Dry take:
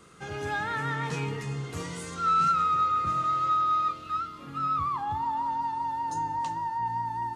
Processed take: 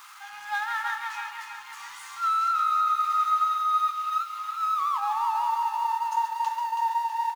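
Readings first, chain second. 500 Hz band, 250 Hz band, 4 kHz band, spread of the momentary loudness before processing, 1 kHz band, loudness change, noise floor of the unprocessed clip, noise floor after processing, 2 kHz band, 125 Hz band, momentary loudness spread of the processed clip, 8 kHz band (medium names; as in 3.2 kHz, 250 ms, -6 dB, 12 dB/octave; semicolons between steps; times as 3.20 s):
under -30 dB, under -35 dB, +2.5 dB, 11 LU, +2.0 dB, +2.0 dB, -43 dBFS, -43 dBFS, +2.0 dB, under -40 dB, 15 LU, no reading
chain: jump at every zero crossing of -36 dBFS; brick-wall FIR high-pass 770 Hz; treble shelf 3.2 kHz -4 dB; delay 136 ms -10 dB; compression 4:1, threshold -27 dBFS, peak gain reduction 6.5 dB; gate -31 dBFS, range -7 dB; peaking EQ 8.2 kHz -3.5 dB 0.22 oct; bit-crushed delay 326 ms, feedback 55%, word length 10-bit, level -7 dB; trim +3.5 dB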